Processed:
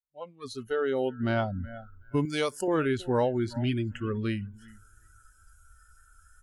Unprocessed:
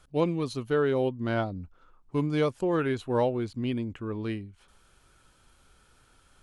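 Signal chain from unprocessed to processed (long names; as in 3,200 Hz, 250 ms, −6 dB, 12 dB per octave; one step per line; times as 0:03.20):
fade in at the beginning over 1.21 s
0:03.44–0:04.06: comb filter 6.5 ms, depth 51%
repeating echo 372 ms, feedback 31%, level −19 dB
downward compressor 2 to 1, threshold −32 dBFS, peak gain reduction 6.5 dB
0:00.48–0:01.23: low-shelf EQ 260 Hz −4 dB
noise reduction from a noise print of the clip's start 23 dB
0:02.25–0:02.68: RIAA equalisation recording
level +6 dB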